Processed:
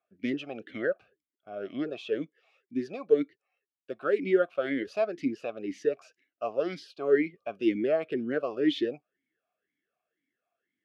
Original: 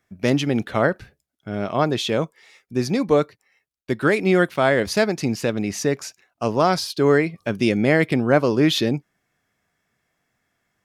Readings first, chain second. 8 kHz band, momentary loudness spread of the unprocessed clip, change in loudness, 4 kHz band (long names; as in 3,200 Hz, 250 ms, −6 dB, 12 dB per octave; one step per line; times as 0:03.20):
below −25 dB, 11 LU, −9.5 dB, −15.5 dB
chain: formant filter swept between two vowels a-i 2 Hz